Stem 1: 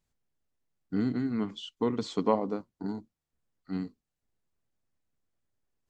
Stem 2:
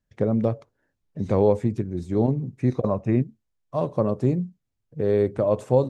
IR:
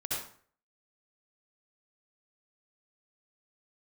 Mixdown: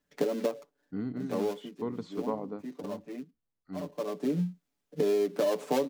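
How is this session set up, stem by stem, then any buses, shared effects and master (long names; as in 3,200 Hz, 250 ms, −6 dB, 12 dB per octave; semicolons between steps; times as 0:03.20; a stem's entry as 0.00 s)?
−6.0 dB, 0.00 s, no send, high-shelf EQ 3,300 Hz −12 dB
+2.5 dB, 0.00 s, no send, gap after every zero crossing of 0.14 ms; Butterworth high-pass 170 Hz 72 dB per octave; comb filter 6.9 ms, depth 92%; automatic ducking −20 dB, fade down 1.95 s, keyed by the first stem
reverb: not used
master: downward compressor 6 to 1, threshold −25 dBFS, peak gain reduction 13 dB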